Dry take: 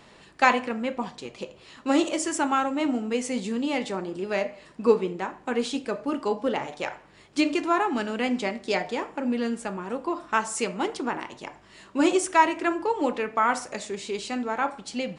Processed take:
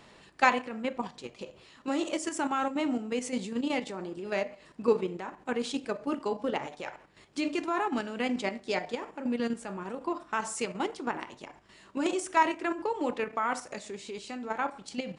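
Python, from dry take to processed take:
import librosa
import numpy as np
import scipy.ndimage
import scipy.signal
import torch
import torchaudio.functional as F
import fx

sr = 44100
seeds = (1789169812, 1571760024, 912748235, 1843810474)

y = fx.level_steps(x, sr, step_db=9)
y = F.gain(torch.from_numpy(y), -1.5).numpy()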